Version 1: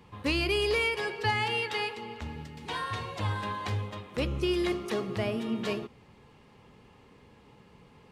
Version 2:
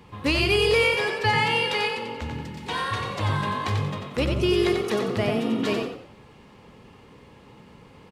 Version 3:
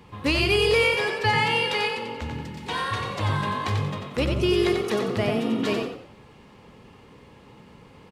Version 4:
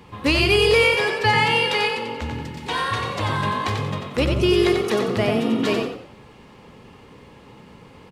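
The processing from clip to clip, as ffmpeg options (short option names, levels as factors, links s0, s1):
-filter_complex "[0:a]asplit=5[s0][s1][s2][s3][s4];[s1]adelay=91,afreqshift=45,volume=0.562[s5];[s2]adelay=182,afreqshift=90,volume=0.186[s6];[s3]adelay=273,afreqshift=135,volume=0.061[s7];[s4]adelay=364,afreqshift=180,volume=0.0202[s8];[s0][s5][s6][s7][s8]amix=inputs=5:normalize=0,volume=1.88"
-af anull
-af "bandreject=f=50:t=h:w=6,bandreject=f=100:t=h:w=6,bandreject=f=150:t=h:w=6,bandreject=f=200:t=h:w=6,volume=1.58"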